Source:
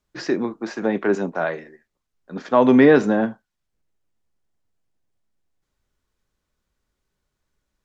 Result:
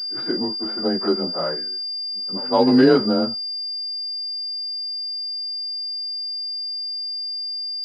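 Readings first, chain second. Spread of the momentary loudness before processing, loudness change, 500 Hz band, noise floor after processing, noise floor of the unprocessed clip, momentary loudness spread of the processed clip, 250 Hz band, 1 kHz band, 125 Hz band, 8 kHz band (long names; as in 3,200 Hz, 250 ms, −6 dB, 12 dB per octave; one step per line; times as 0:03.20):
16 LU, −3.0 dB, −2.0 dB, −28 dBFS, −79 dBFS, 9 LU, −0.5 dB, −2.0 dB, −1.0 dB, can't be measured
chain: partials spread apart or drawn together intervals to 92%
echo ahead of the sound 174 ms −22 dB
switching amplifier with a slow clock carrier 4,800 Hz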